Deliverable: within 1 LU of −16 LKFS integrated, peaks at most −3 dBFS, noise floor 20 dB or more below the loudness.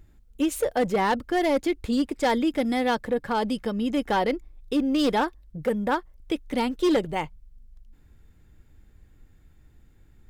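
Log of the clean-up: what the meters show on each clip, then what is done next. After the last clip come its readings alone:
share of clipped samples 1.1%; peaks flattened at −17.0 dBFS; integrated loudness −26.0 LKFS; sample peak −17.0 dBFS; target loudness −16.0 LKFS
→ clipped peaks rebuilt −17 dBFS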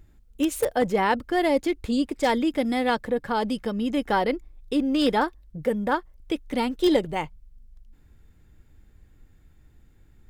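share of clipped samples 0.0%; integrated loudness −25.0 LKFS; sample peak −8.0 dBFS; target loudness −16.0 LKFS
→ level +9 dB
brickwall limiter −3 dBFS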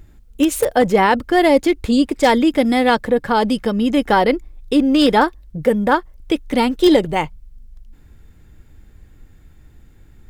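integrated loudness −16.5 LKFS; sample peak −3.0 dBFS; background noise floor −47 dBFS

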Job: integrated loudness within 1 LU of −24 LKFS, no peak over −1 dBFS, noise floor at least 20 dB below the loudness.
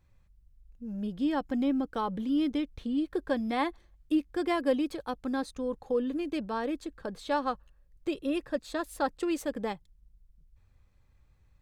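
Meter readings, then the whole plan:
integrated loudness −32.0 LKFS; sample peak −15.0 dBFS; target loudness −24.0 LKFS
→ level +8 dB

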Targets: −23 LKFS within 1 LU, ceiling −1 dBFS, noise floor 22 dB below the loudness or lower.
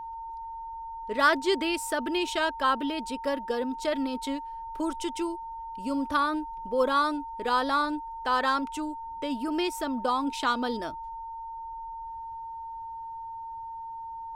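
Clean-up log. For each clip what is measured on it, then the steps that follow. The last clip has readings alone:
interfering tone 910 Hz; level of the tone −36 dBFS; integrated loudness −30.0 LKFS; sample peak −10.5 dBFS; target loudness −23.0 LKFS
→ notch filter 910 Hz, Q 30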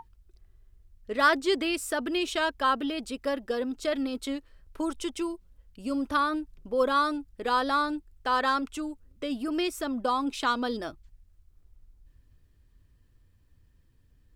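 interfering tone none found; integrated loudness −29.0 LKFS; sample peak −11.0 dBFS; target loudness −23.0 LKFS
→ level +6 dB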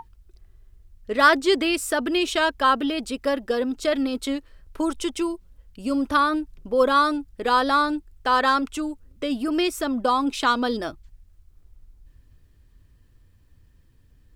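integrated loudness −23.0 LKFS; sample peak −5.0 dBFS; background noise floor −56 dBFS

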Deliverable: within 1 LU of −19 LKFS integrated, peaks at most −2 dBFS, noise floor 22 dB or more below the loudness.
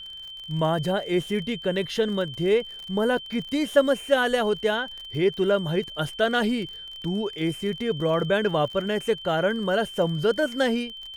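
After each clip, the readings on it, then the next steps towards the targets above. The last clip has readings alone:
crackle rate 39 per second; interfering tone 3,100 Hz; level of the tone −37 dBFS; integrated loudness −25.0 LKFS; sample peak −7.0 dBFS; target loudness −19.0 LKFS
→ click removal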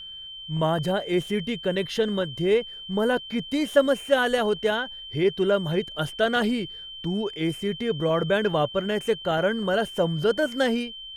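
crackle rate 1.4 per second; interfering tone 3,100 Hz; level of the tone −37 dBFS
→ notch filter 3,100 Hz, Q 30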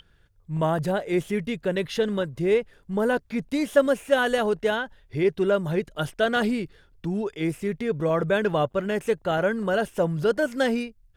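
interfering tone none found; integrated loudness −25.0 LKFS; sample peak −6.5 dBFS; target loudness −19.0 LKFS
→ level +6 dB
brickwall limiter −2 dBFS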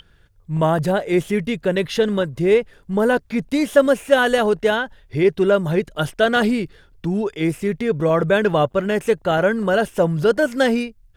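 integrated loudness −19.5 LKFS; sample peak −2.0 dBFS; background noise floor −54 dBFS

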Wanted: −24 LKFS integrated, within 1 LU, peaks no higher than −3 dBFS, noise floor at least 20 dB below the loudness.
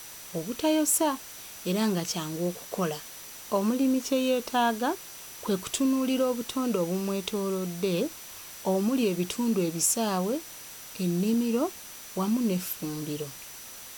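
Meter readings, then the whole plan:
interfering tone 5,900 Hz; level of the tone −50 dBFS; background noise floor −44 dBFS; target noise floor −48 dBFS; integrated loudness −28.0 LKFS; sample peak −12.5 dBFS; target loudness −24.0 LKFS
→ notch filter 5,900 Hz, Q 30
broadband denoise 6 dB, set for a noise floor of −44 dBFS
level +4 dB

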